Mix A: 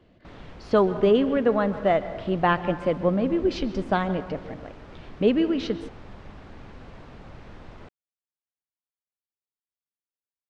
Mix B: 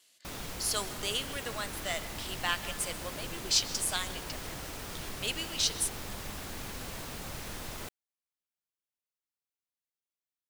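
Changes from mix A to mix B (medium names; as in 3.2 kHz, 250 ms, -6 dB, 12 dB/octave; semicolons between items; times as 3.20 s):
speech: add differentiator; master: remove tape spacing loss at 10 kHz 37 dB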